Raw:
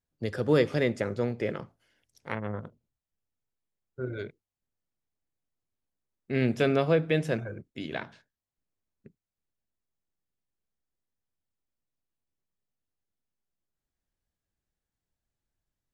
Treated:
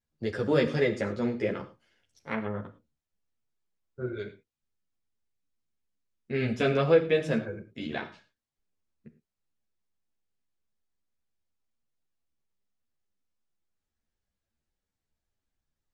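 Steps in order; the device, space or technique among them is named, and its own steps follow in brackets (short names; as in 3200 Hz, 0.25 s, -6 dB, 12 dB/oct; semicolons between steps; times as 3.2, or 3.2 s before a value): string-machine ensemble chorus (ensemble effect; LPF 7800 Hz 12 dB/oct); 4.13–6.61 bell 650 Hz -4 dB 2.2 oct; non-linear reverb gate 0.13 s flat, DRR 11 dB; gain +3.5 dB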